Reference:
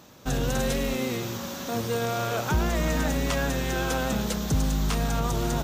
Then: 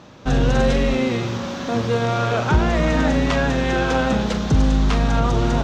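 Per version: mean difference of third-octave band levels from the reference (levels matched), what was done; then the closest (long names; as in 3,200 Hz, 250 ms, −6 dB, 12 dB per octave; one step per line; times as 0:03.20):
5.5 dB: high-frequency loss of the air 150 metres
flutter between parallel walls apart 7.2 metres, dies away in 0.25 s
level +8 dB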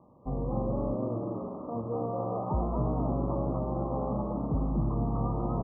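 18.5 dB: Chebyshev low-pass filter 1,200 Hz, order 10
on a send: echo with shifted repeats 242 ms, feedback 30%, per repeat +68 Hz, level −3 dB
on the sum: level −5 dB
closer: first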